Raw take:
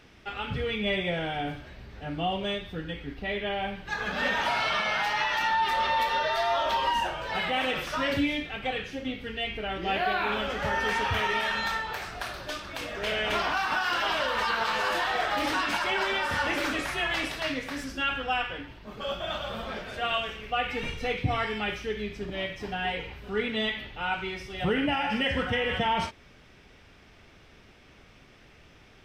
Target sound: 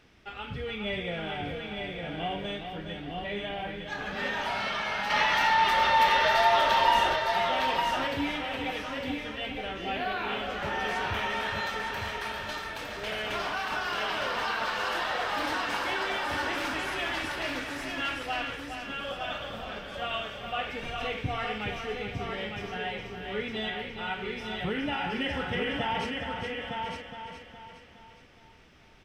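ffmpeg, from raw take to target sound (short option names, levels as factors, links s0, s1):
-filter_complex "[0:a]asplit=2[s0][s1];[s1]aecho=0:1:415|830|1245|1660|2075|2490:0.422|0.207|0.101|0.0496|0.0243|0.0119[s2];[s0][s2]amix=inputs=2:normalize=0,asettb=1/sr,asplit=3[s3][s4][s5];[s3]atrim=end=5.104[s6];[s4]atrim=start=5.1:end=7.16,asetpts=PTS-STARTPTS,afade=t=in:d=0.004:c=qsin,afade=t=out:st=2.056:d=0.004:c=qsin,acontrast=73[s7];[s5]atrim=start=7.156[s8];[s6][s7]acrossfade=d=0.004:c1=hsin:c2=qsin[s9];[s9][s8]acrossfade=d=0.004:c1=qsin:c2=hsin,asplit=2[s10][s11];[s11]aecho=0:1:909:0.596[s12];[s10][s12]amix=inputs=2:normalize=0,volume=0.562"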